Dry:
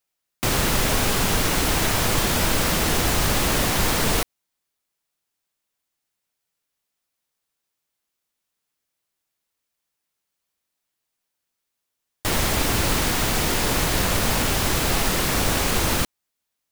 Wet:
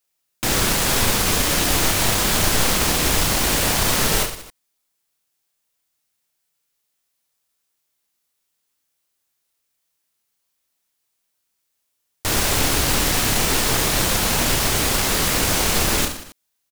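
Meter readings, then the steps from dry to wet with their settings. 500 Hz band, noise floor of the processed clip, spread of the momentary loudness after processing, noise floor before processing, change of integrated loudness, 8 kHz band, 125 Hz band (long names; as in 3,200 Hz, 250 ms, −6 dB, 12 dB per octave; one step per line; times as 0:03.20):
+1.0 dB, −74 dBFS, 4 LU, −81 dBFS, +3.0 dB, +5.0 dB, 0.0 dB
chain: wavefolder on the positive side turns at −19 dBFS
high-shelf EQ 3,900 Hz +5.5 dB
reverse bouncing-ball delay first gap 30 ms, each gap 1.3×, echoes 5
highs frequency-modulated by the lows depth 0.7 ms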